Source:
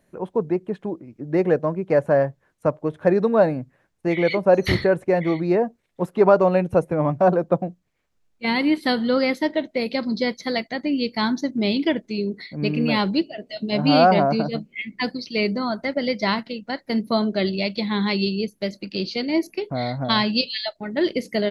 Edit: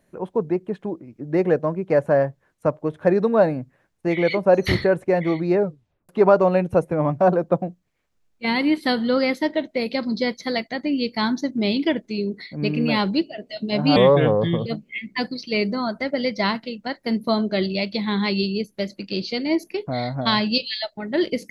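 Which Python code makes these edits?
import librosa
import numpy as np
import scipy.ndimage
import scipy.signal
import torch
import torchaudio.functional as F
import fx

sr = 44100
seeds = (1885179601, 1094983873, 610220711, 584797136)

y = fx.edit(x, sr, fx.tape_stop(start_s=5.55, length_s=0.54),
    fx.speed_span(start_s=13.96, length_s=0.53, speed=0.76), tone=tone)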